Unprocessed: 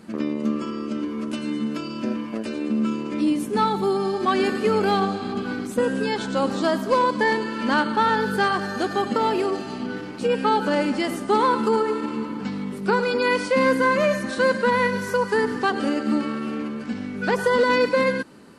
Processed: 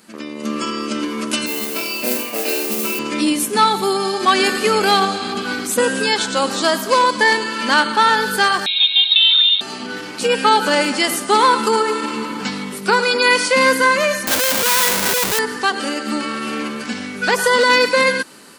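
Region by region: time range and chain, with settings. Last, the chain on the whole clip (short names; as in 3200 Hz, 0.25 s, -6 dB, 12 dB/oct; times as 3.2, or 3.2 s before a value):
1.46–2.99 speaker cabinet 200–4300 Hz, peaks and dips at 210 Hz -4 dB, 330 Hz -8 dB, 680 Hz +4 dB, 1200 Hz -9 dB, 1700 Hz -9 dB, 3400 Hz -9 dB + flutter echo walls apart 4.2 m, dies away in 0.61 s + modulation noise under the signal 17 dB
8.66–9.61 high shelf 2100 Hz -10.5 dB + inverted band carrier 4000 Hz
14.27–15.39 low shelf 230 Hz -7 dB + Schmitt trigger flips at -30 dBFS
whole clip: tilt +3.5 dB/oct; AGC gain up to 11.5 dB; gain -1 dB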